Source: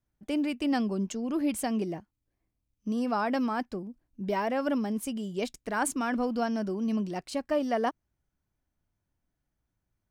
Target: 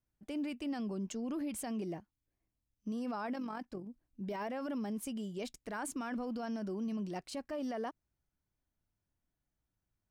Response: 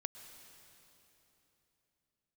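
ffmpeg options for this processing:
-filter_complex "[0:a]alimiter=level_in=2dB:limit=-24dB:level=0:latency=1:release=28,volume=-2dB,asettb=1/sr,asplit=3[link_01][link_02][link_03];[link_01]atrim=end=3.334[link_04];[link_02]atrim=start=3.33:end=3.87,asetpts=PTS-STARTPTS,afade=type=in:duration=0.004:curve=qsin,afade=type=out:start_time=0.536:duration=0.004:curve=qsin,tremolo=f=45:d=0.519[link_05];[link_03]atrim=start=3.866[link_06];[link_04][link_05]acrossfade=duration=0.004:curve1=hsin:curve2=qsin[link_07];[link_07][link_06]acrossfade=duration=0.004:curve1=qsin:curve2=hsin,volume=-5.5dB"

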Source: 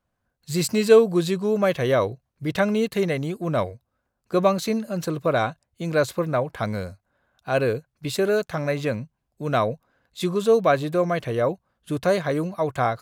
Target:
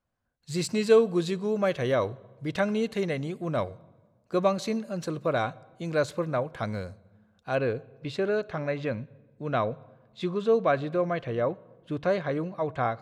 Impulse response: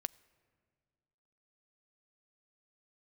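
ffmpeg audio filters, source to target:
-filter_complex "[0:a]asetnsamples=nb_out_samples=441:pad=0,asendcmd='7.55 lowpass f 3600',lowpass=8300[link_01];[1:a]atrim=start_sample=2205,asetrate=66150,aresample=44100[link_02];[link_01][link_02]afir=irnorm=-1:irlink=0"

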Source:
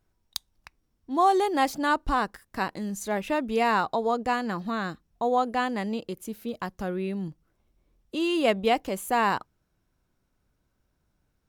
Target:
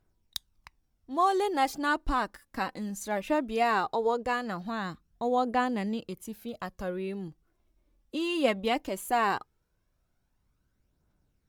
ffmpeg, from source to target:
ffmpeg -i in.wav -af "aphaser=in_gain=1:out_gain=1:delay=4:decay=0.4:speed=0.18:type=triangular,volume=-3.5dB" out.wav

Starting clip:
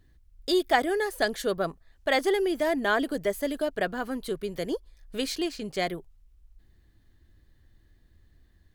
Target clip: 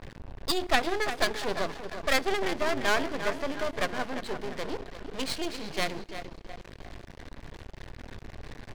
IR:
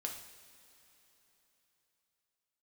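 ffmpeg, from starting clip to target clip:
-filter_complex "[0:a]aeval=exprs='val(0)+0.5*0.0266*sgn(val(0))':channel_layout=same,tiltshelf=frequency=710:gain=-4.5,bandreject=frequency=60:width_type=h:width=6,bandreject=frequency=120:width_type=h:width=6,bandreject=frequency=180:width_type=h:width=6,bandreject=frequency=240:width_type=h:width=6,bandreject=frequency=300:width_type=h:width=6,bandreject=frequency=360:width_type=h:width=6,bandreject=frequency=420:width_type=h:width=6,bandreject=frequency=480:width_type=h:width=6,aecho=1:1:347|694|1041|1388|1735:0.355|0.167|0.0784|0.0368|0.0173,acrusher=bits=6:mix=0:aa=0.000001,adynamicsmooth=sensitivity=2:basefreq=1700,equalizer=frequency=4700:width_type=o:width=0.77:gain=3.5,bandreject=frequency=1300:width=6.7,aeval=exprs='max(val(0),0)':channel_layout=same,asplit=2[link_01][link_02];[1:a]atrim=start_sample=2205[link_03];[link_02][link_03]afir=irnorm=-1:irlink=0,volume=-20dB[link_04];[link_01][link_04]amix=inputs=2:normalize=0"

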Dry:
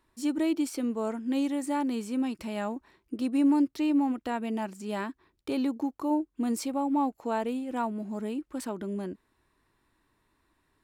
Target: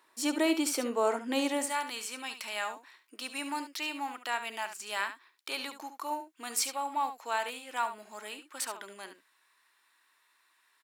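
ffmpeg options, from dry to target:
ffmpeg -i in.wav -af "asetnsamples=nb_out_samples=441:pad=0,asendcmd='1.66 highpass f 1400',highpass=570,aecho=1:1:71:0.299,volume=8dB" out.wav

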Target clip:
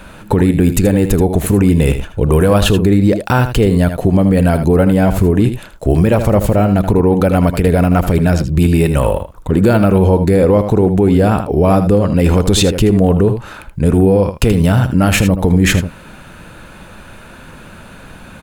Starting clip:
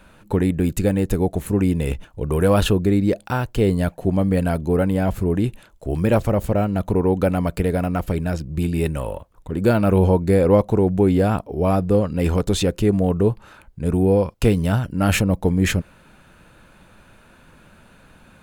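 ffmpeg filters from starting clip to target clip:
ffmpeg -i in.wav -af "acompressor=threshold=-19dB:ratio=4,aecho=1:1:79:0.282,alimiter=level_in=14.5dB:limit=-1dB:release=50:level=0:latency=1,volume=-1dB" out.wav

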